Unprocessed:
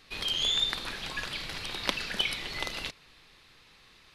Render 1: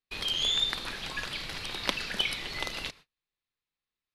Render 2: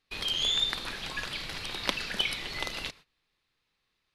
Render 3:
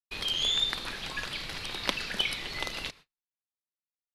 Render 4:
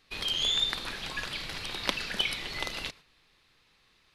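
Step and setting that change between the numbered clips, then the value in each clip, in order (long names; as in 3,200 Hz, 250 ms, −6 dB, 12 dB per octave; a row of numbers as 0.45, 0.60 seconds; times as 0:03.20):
noise gate, range: −36, −21, −58, −8 decibels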